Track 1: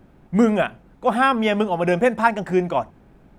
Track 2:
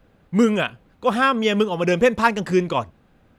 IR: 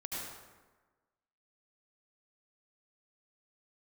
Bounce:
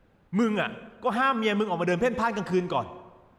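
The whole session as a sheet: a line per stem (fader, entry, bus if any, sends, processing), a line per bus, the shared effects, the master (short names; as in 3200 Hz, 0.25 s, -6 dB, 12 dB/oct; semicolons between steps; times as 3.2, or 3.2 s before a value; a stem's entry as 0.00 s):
-11.5 dB, 0.00 s, no send, HPF 610 Hz 12 dB/oct
-6.0 dB, 0.00 s, send -15.5 dB, high shelf 5900 Hz -5.5 dB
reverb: on, RT60 1.3 s, pre-delay 68 ms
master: limiter -14.5 dBFS, peak gain reduction 8 dB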